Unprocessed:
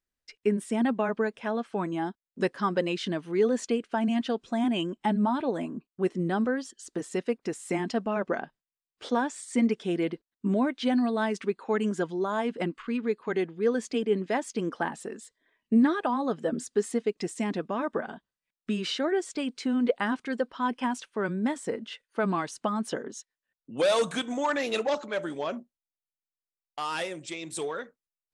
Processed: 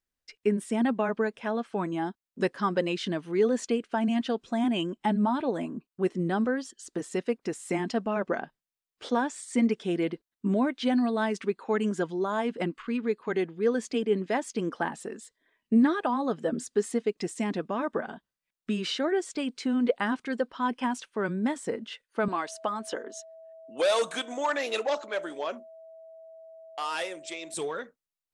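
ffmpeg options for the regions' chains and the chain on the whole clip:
ffmpeg -i in.wav -filter_complex "[0:a]asettb=1/sr,asplit=3[link_01][link_02][link_03];[link_01]atrim=end=22.284[link_04];[link_02]atrim=start=22.28:end=27.54,asetpts=PTS-STARTPTS,afade=type=in:duration=0.004:curve=qsin,afade=type=out:start_time=5.256:duration=0.004:curve=qsin,highpass=370,aeval=exprs='val(0)+0.00501*sin(2*PI*650*n/s)':channel_layout=same[link_05];[link_03]atrim=start=27.536[link_06];[link_04][link_05]acrossfade=duration=0.004:curve1=hsin:curve2=qsin[link_07];[link_07][link_06]acrossfade=duration=0.004:curve1=qsin:curve2=hsin" out.wav

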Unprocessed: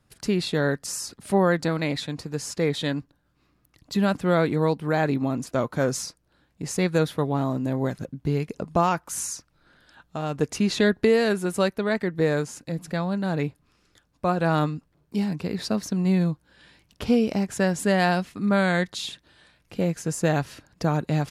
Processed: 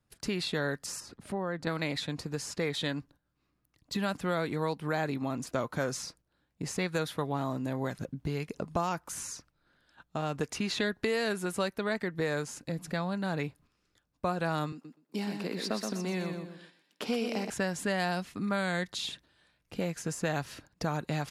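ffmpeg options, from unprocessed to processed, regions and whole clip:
ffmpeg -i in.wav -filter_complex "[0:a]asettb=1/sr,asplit=3[link_01][link_02][link_03];[link_01]atrim=end=1.004[link_04];[link_02]atrim=start=1:end=1.67,asetpts=PTS-STARTPTS,afade=type=in:duration=0.004:curve=qsin,afade=type=out:start_time=0.666:duration=0.004:curve=qsin,highshelf=frequency=3300:gain=-10.5,acompressor=threshold=-40dB:ratio=1.5:attack=3.2:release=140:knee=1:detection=peak[link_05];[link_03]atrim=start=1.666[link_06];[link_04][link_05]acrossfade=duration=0.004:curve1=hsin:curve2=qsin[link_07];[link_07][link_06]acrossfade=duration=0.004:curve1=qsin:curve2=hsin,asettb=1/sr,asplit=3[link_08][link_09][link_10];[link_08]atrim=end=14.724[link_11];[link_09]atrim=start=14.72:end=17.5,asetpts=PTS-STARTPTS,afade=type=in:duration=0.004:curve=qsin,afade=type=out:start_time=2.776:duration=0.004:curve=qsin,highpass=frequency=220:width=0.5412,highpass=frequency=220:width=1.3066,aecho=1:1:123|246|369|492:0.473|0.161|0.0547|0.0186,atrim=end_sample=122598[link_12];[link_10]atrim=start=17.496[link_13];[link_11][link_12]acrossfade=duration=0.004:curve1=hsin:curve2=qsin[link_14];[link_14][link_13]acrossfade=duration=0.004:curve1=qsin:curve2=hsin,agate=range=-9dB:threshold=-50dB:ratio=16:detection=peak,acrossover=split=730|4400[link_15][link_16][link_17];[link_15]acompressor=threshold=-30dB:ratio=4[link_18];[link_16]acompressor=threshold=-30dB:ratio=4[link_19];[link_17]acompressor=threshold=-39dB:ratio=4[link_20];[link_18][link_19][link_20]amix=inputs=3:normalize=0,volume=-2dB" out.wav

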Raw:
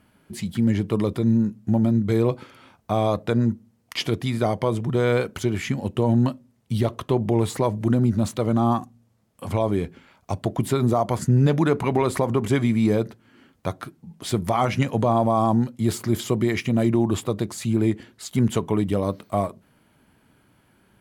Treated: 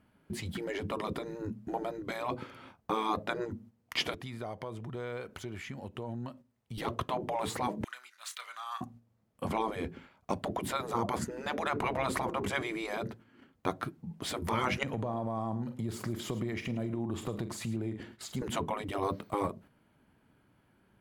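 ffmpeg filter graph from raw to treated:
ffmpeg -i in.wav -filter_complex "[0:a]asettb=1/sr,asplit=3[link_01][link_02][link_03];[link_01]atrim=end=4.144[link_04];[link_02]atrim=start=4.14:end=6.78,asetpts=PTS-STARTPTS,afade=type=in:duration=0.004:curve=qsin,afade=type=out:start_time=2.636:duration=0.004:curve=qsin,equalizer=frequency=180:width=0.44:gain=-8,acompressor=threshold=-42dB:ratio=2.5:attack=3.2:release=140:knee=1:detection=peak[link_05];[link_03]atrim=start=6.776[link_06];[link_04][link_05]acrossfade=duration=0.004:curve1=hsin:curve2=qsin[link_07];[link_07][link_06]acrossfade=duration=0.004:curve1=qsin:curve2=hsin,asettb=1/sr,asplit=3[link_08][link_09][link_10];[link_08]atrim=end=7.844[link_11];[link_09]atrim=start=7.84:end=8.81,asetpts=PTS-STARTPTS,afade=type=in:duration=0.004:curve=qsin,afade=type=out:start_time=0.966:duration=0.004:curve=qsin,highpass=frequency=1500:width=0.5412,highpass=frequency=1500:width=1.3066,asplit=2[link_12][link_13];[link_13]adelay=32,volume=-11.5dB[link_14];[link_12][link_14]amix=inputs=2:normalize=0,atrim=end_sample=42777[link_15];[link_10]atrim=start=8.806[link_16];[link_11][link_15]acrossfade=duration=0.004:curve1=hsin:curve2=qsin[link_17];[link_17][link_16]acrossfade=duration=0.004:curve1=qsin:curve2=hsin,asettb=1/sr,asplit=3[link_18][link_19][link_20];[link_18]atrim=end=14.834[link_21];[link_19]atrim=start=14.83:end=18.42,asetpts=PTS-STARTPTS,afade=type=in:duration=0.004:curve=qsin,afade=type=out:start_time=3.586:duration=0.004:curve=qsin,asplit=2[link_22][link_23];[link_23]adelay=44,volume=-14dB[link_24];[link_22][link_24]amix=inputs=2:normalize=0,atrim=end_sample=158319,acompressor=threshold=-32dB:ratio=5:attack=3.2:release=140:knee=1:detection=peak,aecho=1:1:107:0.178,atrim=end_sample=158319[link_25];[link_20]atrim=start=18.416[link_26];[link_21][link_25]acrossfade=duration=0.004:curve1=hsin:curve2=qsin[link_27];[link_27][link_26]acrossfade=duration=0.004:curve1=qsin:curve2=hsin,equalizer=frequency=9600:width=0.31:gain=-7.5,afftfilt=real='re*lt(hypot(re,im),0.251)':imag='im*lt(hypot(re,im),0.251)':win_size=1024:overlap=0.75,agate=range=-7dB:threshold=-52dB:ratio=16:detection=peak" out.wav

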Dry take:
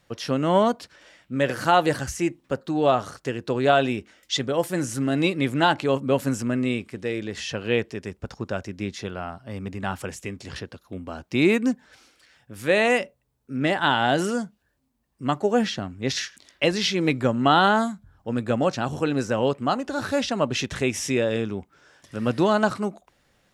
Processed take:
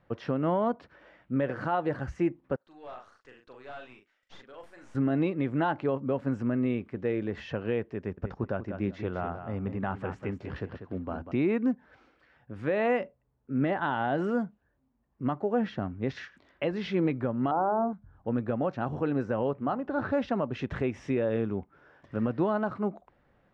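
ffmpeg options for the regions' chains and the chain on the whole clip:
ffmpeg -i in.wav -filter_complex "[0:a]asettb=1/sr,asplit=3[link_01][link_02][link_03];[link_01]atrim=end=2.564[link_04];[link_02]atrim=start=2.56:end=4.95,asetpts=PTS-STARTPTS,afade=type=in:duration=0.004:curve=qsin,afade=type=out:start_time=2.386:duration=0.004:curve=qsin,aderivative,asplit=2[link_05][link_06];[link_06]adelay=40,volume=-6dB[link_07];[link_05][link_07]amix=inputs=2:normalize=0,atrim=end_sample=105399,aeval=exprs='(tanh(63.1*val(0)+0.35)-tanh(0.35))/63.1':channel_layout=same[link_08];[link_03]atrim=start=4.946[link_09];[link_04][link_08]acrossfade=duration=0.004:curve1=hsin:curve2=qsin[link_10];[link_10][link_09]acrossfade=duration=0.004:curve1=qsin:curve2=hsin,asettb=1/sr,asplit=3[link_11][link_12][link_13];[link_11]atrim=end=7.984[link_14];[link_12]atrim=start=7.98:end=11.32,asetpts=PTS-STARTPTS,afade=type=in:duration=0.004:curve=qsin,afade=type=out:start_time=3.336:duration=0.004:curve=qsin,highshelf=frequency=8000:gain=-3.5,aecho=1:1:193|386:0.335|0.0536,atrim=end_sample=147294[link_15];[link_13]atrim=start=11.316[link_16];[link_14][link_15]acrossfade=duration=0.004:curve1=hsin:curve2=qsin[link_17];[link_17][link_16]acrossfade=duration=0.004:curve1=qsin:curve2=hsin,asettb=1/sr,asplit=3[link_18][link_19][link_20];[link_18]atrim=end=17.514[link_21];[link_19]atrim=start=17.51:end=17.93,asetpts=PTS-STARTPTS,afade=type=in:duration=0.004:curve=qsin,afade=type=out:start_time=0.416:duration=0.004:curve=qsin,lowpass=frequency=1200:width=0.5412,lowpass=frequency=1200:width=1.3066,equalizer=frequency=600:width_type=o:width=2.1:gain=12,bandreject=frequency=50:width_type=h:width=6,bandreject=frequency=100:width_type=h:width=6,bandreject=frequency=150:width_type=h:width=6,bandreject=frequency=200:width_type=h:width=6,bandreject=frequency=250:width_type=h:width=6,bandreject=frequency=300:width_type=h:width=6,bandreject=frequency=350:width_type=h:width=6,bandreject=frequency=400:width_type=h:width=6,bandreject=frequency=450:width_type=h:width=6[link_22];[link_20]atrim=start=17.926[link_23];[link_21][link_22]acrossfade=duration=0.004:curve1=hsin:curve2=qsin[link_24];[link_24][link_23]acrossfade=duration=0.004:curve1=qsin:curve2=hsin,asettb=1/sr,asplit=3[link_25][link_26][link_27];[link_25]atrim=end=19.474[link_28];[link_26]atrim=start=19.47:end=20.13,asetpts=PTS-STARTPTS,afade=type=in:duration=0.004:curve=qsin,afade=type=out:start_time=0.656:duration=0.004:curve=qsin,bandreject=frequency=60:width_type=h:width=6,bandreject=frequency=120:width_type=h:width=6,bandreject=frequency=180:width_type=h:width=6,acrossover=split=5400[link_29][link_30];[link_30]acompressor=threshold=-54dB:ratio=4:attack=1:release=60[link_31];[link_29][link_31]amix=inputs=2:normalize=0,highshelf=frequency=5100:gain=-7[link_32];[link_27]atrim=start=20.126[link_33];[link_28][link_32]acrossfade=duration=0.004:curve1=hsin:curve2=qsin[link_34];[link_34][link_33]acrossfade=duration=0.004:curve1=qsin:curve2=hsin,lowpass=1500,alimiter=limit=-18dB:level=0:latency=1:release=355" out.wav

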